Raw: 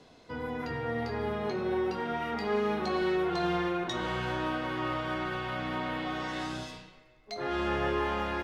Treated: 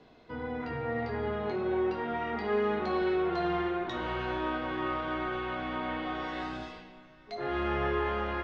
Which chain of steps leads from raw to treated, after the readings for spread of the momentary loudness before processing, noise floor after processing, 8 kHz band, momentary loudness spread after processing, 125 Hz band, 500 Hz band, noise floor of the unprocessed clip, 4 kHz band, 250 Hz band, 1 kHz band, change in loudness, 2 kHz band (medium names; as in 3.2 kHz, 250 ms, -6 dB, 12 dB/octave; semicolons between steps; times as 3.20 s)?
8 LU, -56 dBFS, no reading, 9 LU, -2.0 dB, +0.5 dB, -57 dBFS, -4.0 dB, -0.5 dB, 0.0 dB, 0.0 dB, -1.0 dB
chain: low-pass 3.3 kHz 12 dB/octave; two-slope reverb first 0.36 s, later 4.9 s, from -19 dB, DRR 6.5 dB; trim -1.5 dB